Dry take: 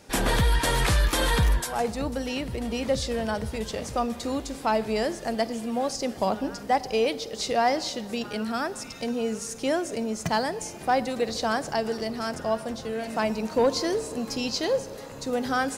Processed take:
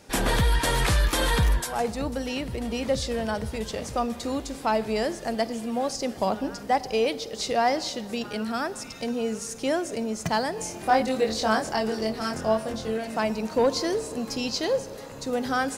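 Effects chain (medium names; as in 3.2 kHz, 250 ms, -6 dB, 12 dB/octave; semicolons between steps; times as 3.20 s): 10.55–12.98 s: doubling 23 ms -2.5 dB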